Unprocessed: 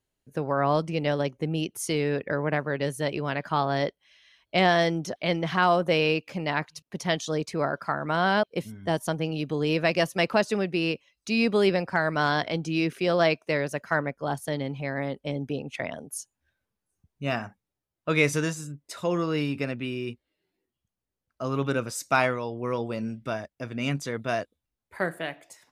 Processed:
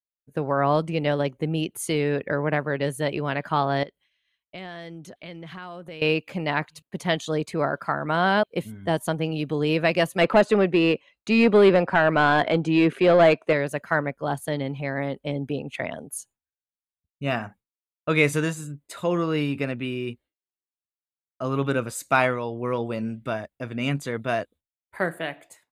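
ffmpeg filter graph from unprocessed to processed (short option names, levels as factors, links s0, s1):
-filter_complex "[0:a]asettb=1/sr,asplit=3[s0][s1][s2];[s0]atrim=end=3.834[s3];[s1]atrim=start=3.83:end=6.02,asetpts=PTS-STARTPTS,afade=t=in:d=0.004:c=qsin,afade=t=out:st=2.186:d=0.004:c=qsin,equalizer=f=750:t=o:w=1.5:g=-4.5,acompressor=threshold=0.00708:ratio=3:attack=3.2:release=140:knee=1:detection=peak[s4];[s2]atrim=start=6.016[s5];[s3][s4]acrossfade=d=0.004:c1=hsin:c2=qsin[s6];[s6][s5]acrossfade=d=0.004:c1=qsin:c2=hsin,asettb=1/sr,asplit=3[s7][s8][s9];[s7]atrim=end=10.214[s10];[s8]atrim=start=10.21:end=13.53,asetpts=PTS-STARTPTS,afade=t=in:d=0.004:c=qsin,afade=t=out:st=3.316:d=0.004:c=qsin,lowpass=f=12000:w=0.5412,lowpass=f=12000:w=1.3066,tiltshelf=f=730:g=4.5,asplit=2[s11][s12];[s12]highpass=f=720:p=1,volume=5.62,asoftclip=type=tanh:threshold=0.335[s13];[s11][s13]amix=inputs=2:normalize=0,lowpass=f=2800:p=1,volume=0.501[s14];[s9]atrim=start=13.526[s15];[s10][s14]acrossfade=d=0.004:c1=hsin:c2=qsin[s16];[s16][s15]acrossfade=d=0.004:c1=qsin:c2=hsin,agate=range=0.0224:threshold=0.00447:ratio=3:detection=peak,equalizer=f=5500:t=o:w=0.35:g=-12.5,volume=1.33"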